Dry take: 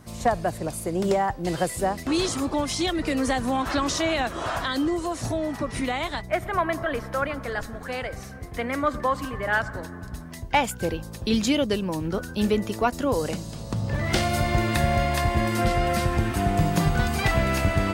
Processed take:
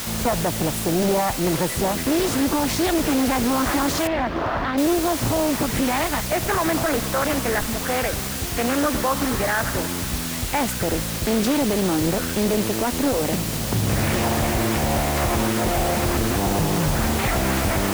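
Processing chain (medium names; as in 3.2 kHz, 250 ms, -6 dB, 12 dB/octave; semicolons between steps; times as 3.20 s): graphic EQ 250/4000/8000 Hz +4/-6/-6 dB; peak limiter -21 dBFS, peak gain reduction 11.5 dB; word length cut 6-bit, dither triangular; 4.07–4.78 s: distance through air 310 m; loudspeaker Doppler distortion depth 0.81 ms; trim +7.5 dB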